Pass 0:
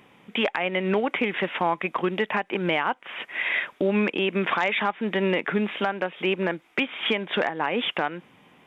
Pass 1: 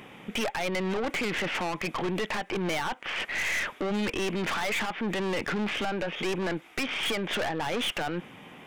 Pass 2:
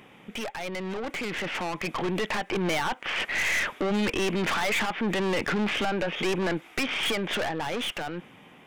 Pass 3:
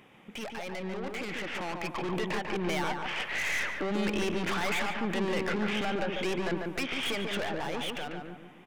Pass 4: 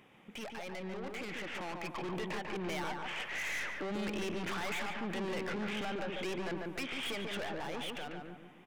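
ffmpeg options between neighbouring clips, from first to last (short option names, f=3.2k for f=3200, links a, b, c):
-af "aeval=exprs='(tanh(35.5*val(0)+0.4)-tanh(0.4))/35.5':c=same,bandreject=f=1k:w=19,alimiter=level_in=8.5dB:limit=-24dB:level=0:latency=1:release=15,volume=-8.5dB,volume=9dB"
-af "dynaudnorm=f=390:g=9:m=7.5dB,volume=-4.5dB"
-filter_complex "[0:a]asplit=2[a][b];[b]adelay=144,lowpass=f=1.9k:p=1,volume=-3dB,asplit=2[c][d];[d]adelay=144,lowpass=f=1.9k:p=1,volume=0.45,asplit=2[e][f];[f]adelay=144,lowpass=f=1.9k:p=1,volume=0.45,asplit=2[g][h];[h]adelay=144,lowpass=f=1.9k:p=1,volume=0.45,asplit=2[i][j];[j]adelay=144,lowpass=f=1.9k:p=1,volume=0.45,asplit=2[k][l];[l]adelay=144,lowpass=f=1.9k:p=1,volume=0.45[m];[a][c][e][g][i][k][m]amix=inputs=7:normalize=0,volume=-5.5dB"
-af "asoftclip=type=tanh:threshold=-26.5dB,volume=-4.5dB"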